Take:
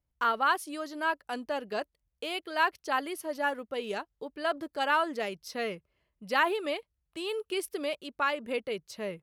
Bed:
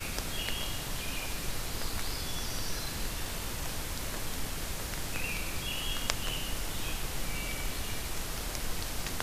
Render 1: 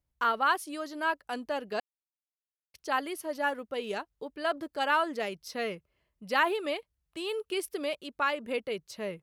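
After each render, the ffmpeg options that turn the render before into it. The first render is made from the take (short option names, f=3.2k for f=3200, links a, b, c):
-filter_complex "[0:a]asplit=3[a][b][c];[a]atrim=end=1.8,asetpts=PTS-STARTPTS,afade=t=out:st=1.796:d=0.004:c=hsin[d];[b]atrim=start=1.8:end=2.74,asetpts=PTS-STARTPTS,volume=0[e];[c]atrim=start=2.74,asetpts=PTS-STARTPTS,afade=t=in:d=0.004:c=hsin[f];[d][e][f]concat=n=3:v=0:a=1"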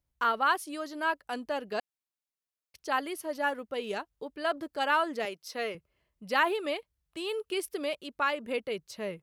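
-filter_complex "[0:a]asettb=1/sr,asplit=3[a][b][c];[a]atrim=end=5.254[d];[b]atrim=start=5.25:end=5.75,asetpts=PTS-STARTPTS,afade=t=in:d=0.004:c=qsin,afade=t=out:st=0.496:d=0.004:c=qsin,highpass=290[e];[c]atrim=start=5.746[f];[d][e]acrossfade=d=0.004:c1=hsin:c2=qsin[g];[g][f]acrossfade=d=0.004:c1=qsin:c2=hsin"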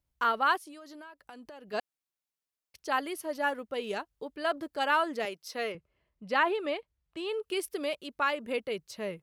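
-filter_complex "[0:a]asplit=3[a][b][c];[a]afade=t=out:st=0.57:d=0.02[d];[b]acompressor=threshold=-44dB:ratio=12:attack=3.2:release=140:knee=1:detection=peak,afade=t=in:st=0.57:d=0.02,afade=t=out:st=1.72:d=0.02[e];[c]afade=t=in:st=1.72:d=0.02[f];[d][e][f]amix=inputs=3:normalize=0,asettb=1/sr,asplit=3[g][h][i];[g]atrim=end=5.724[j];[h]atrim=start=5.72:end=7.43,asetpts=PTS-STARTPTS,afade=t=in:d=0.004:c=qsin,afade=t=out:st=1.706:d=0.004:c=qsin,aemphasis=mode=reproduction:type=50fm[k];[i]atrim=start=7.426[l];[j][k]acrossfade=d=0.004:c1=hsin:c2=qsin[m];[m][l]acrossfade=d=0.004:c1=qsin:c2=hsin"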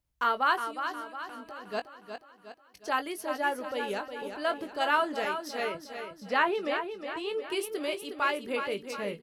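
-filter_complex "[0:a]asplit=2[a][b];[b]adelay=20,volume=-9.5dB[c];[a][c]amix=inputs=2:normalize=0,aecho=1:1:362|724|1086|1448|1810|2172:0.398|0.199|0.0995|0.0498|0.0249|0.0124"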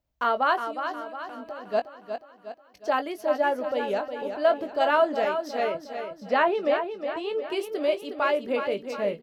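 -af "equalizer=f=250:t=o:w=0.67:g=5,equalizer=f=630:t=o:w=0.67:g=11,equalizer=f=10k:t=o:w=0.67:g=-11"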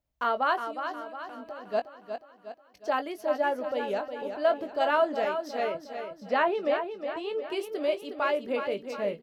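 -af "volume=-3dB"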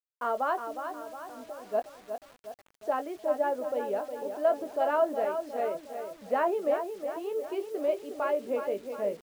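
-af "bandpass=f=500:t=q:w=0.7:csg=0,acrusher=bits=8:mix=0:aa=0.000001"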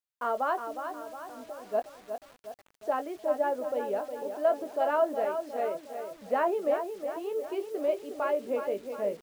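-filter_complex "[0:a]asettb=1/sr,asplit=3[a][b][c];[a]atrim=end=4.234[d];[b]atrim=start=4.23:end=6.12,asetpts=PTS-STARTPTS,afade=t=in:d=0.004:c=qsin,afade=t=out:st=1.886:d=0.004:c=qsin,highpass=f=120:p=1[e];[c]atrim=start=6.116[f];[d][e]acrossfade=d=0.004:c1=hsin:c2=qsin[g];[g][f]acrossfade=d=0.004:c1=qsin:c2=hsin"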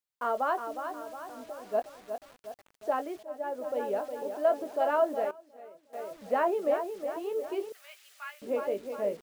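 -filter_complex "[0:a]asettb=1/sr,asplit=3[a][b][c];[a]atrim=end=7.724[d];[b]atrim=start=7.72:end=8.42,asetpts=PTS-STARTPTS,afade=t=in:d=0.004:c=qsin,afade=t=out:st=0.696:d=0.004:c=qsin,highpass=f=1.5k:w=0.5412,highpass=f=1.5k:w=1.3066[e];[c]atrim=start=8.416[f];[d][e]acrossfade=d=0.004:c1=hsin:c2=qsin[g];[g][f]acrossfade=d=0.004:c1=qsin:c2=hsin,asplit=4[h][i][j][k];[h]atrim=end=3.23,asetpts=PTS-STARTPTS,afade=t=out:st=3.226:d=0.004:c=hsin:silence=0.141254[l];[i]atrim=start=3.23:end=5.31,asetpts=PTS-STARTPTS,afade=t=in:d=0.6:silence=0.141254,afade=t=out:st=1.76:d=0.32:c=log:silence=0.125893[m];[j]atrim=start=5.31:end=5.93,asetpts=PTS-STARTPTS,volume=-18dB[n];[k]atrim=start=5.93,asetpts=PTS-STARTPTS,afade=t=in:d=0.32:c=log:silence=0.125893[o];[l][m][n][o]concat=n=4:v=0:a=1"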